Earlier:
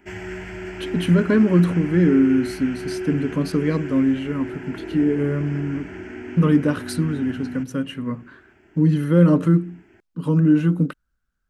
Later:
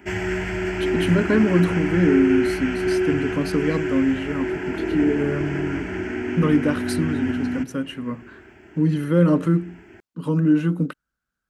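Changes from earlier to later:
speech: add HPF 180 Hz 6 dB/oct; background +7.5 dB

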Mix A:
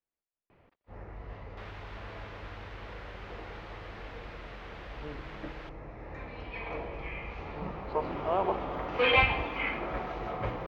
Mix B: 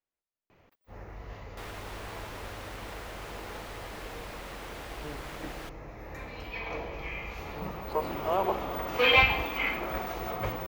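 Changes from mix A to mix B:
second sound: remove HPF 1100 Hz; master: remove air absorption 250 m

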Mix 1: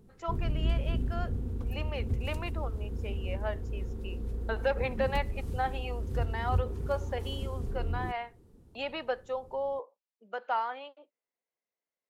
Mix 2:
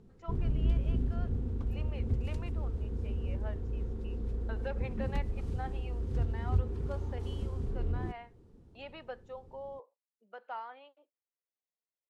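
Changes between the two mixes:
speech -10.5 dB; master: add air absorption 69 m

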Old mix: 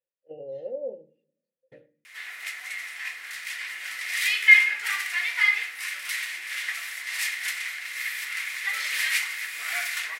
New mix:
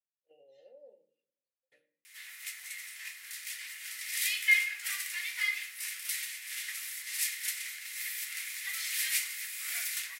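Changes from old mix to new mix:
speech: send +8.5 dB; master: add differentiator

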